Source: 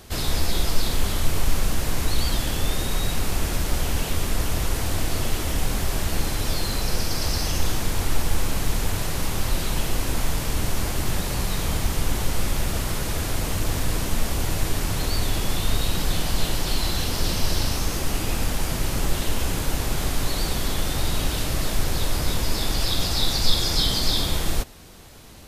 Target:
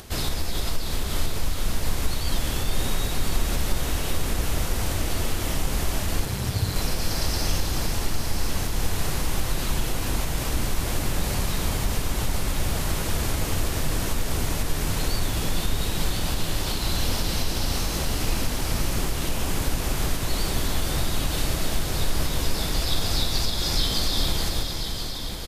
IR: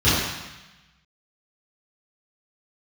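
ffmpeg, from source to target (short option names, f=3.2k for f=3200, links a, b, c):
-filter_complex "[0:a]acompressor=threshold=-20dB:ratio=6,asplit=2[a][b];[b]aecho=0:1:434|868|1302|1736|2170|2604:0.398|0.211|0.112|0.0593|0.0314|0.0166[c];[a][c]amix=inputs=2:normalize=0,acompressor=mode=upward:threshold=-40dB:ratio=2.5,asplit=2[d][e];[e]aecho=0:1:1030:0.398[f];[d][f]amix=inputs=2:normalize=0,asettb=1/sr,asplit=3[g][h][i];[g]atrim=end=6.254[j];[h]atrim=start=6.25:end=6.76,asetpts=PTS-STARTPTS,afade=t=in:d=0.004:c=qsin,afade=t=out:st=0.506:d=0.004:c=qsin,aeval=exprs='val(0)*sin(2*PI*100*n/s)':c=same[k];[i]atrim=start=6.756[l];[j][k]acrossfade=d=0.004:c1=hsin:c2=qsin[m];[m][l]acrossfade=d=0.004:c1=qsin:c2=hsin"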